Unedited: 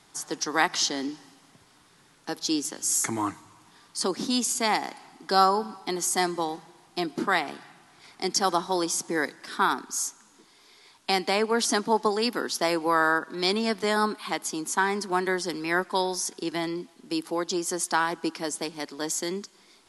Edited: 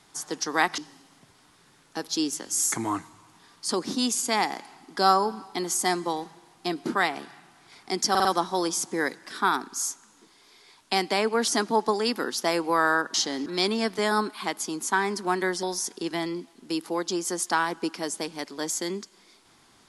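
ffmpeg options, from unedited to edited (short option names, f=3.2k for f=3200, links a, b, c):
-filter_complex "[0:a]asplit=8[a][b][c][d][e][f][g][h];[a]atrim=end=0.782[i];[b]atrim=start=1.098:end=8.472[j];[c]atrim=start=8.418:end=8.472[k];[d]atrim=start=8.418:end=8.472[l];[e]atrim=start=8.418:end=13.312[m];[f]atrim=start=0.778:end=1.102[n];[g]atrim=start=13.308:end=15.482[o];[h]atrim=start=16.038[p];[i][j]acrossfade=d=0.004:c1=hsin:c2=hsin[q];[q][k]acrossfade=d=0.004:c1=hsin:c2=hsin[r];[r][l]acrossfade=d=0.004:c1=hsin:c2=hsin[s];[s][m]acrossfade=d=0.004:c1=hsin:c2=hsin[t];[t][n]acrossfade=d=0.004:c1=hsin:c2=hsin[u];[u][o]acrossfade=d=0.004:c1=hsin:c2=hsin[v];[v][p]acrossfade=d=0.004:c1=hsin:c2=hsin"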